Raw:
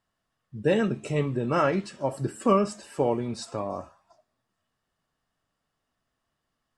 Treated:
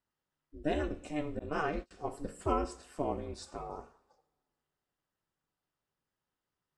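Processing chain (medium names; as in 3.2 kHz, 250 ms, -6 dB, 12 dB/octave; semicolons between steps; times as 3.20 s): ring modulator 150 Hz; two-slope reverb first 0.6 s, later 2.5 s, from -26 dB, DRR 12 dB; 1.39–1.91 s: gate -30 dBFS, range -31 dB; trim -7 dB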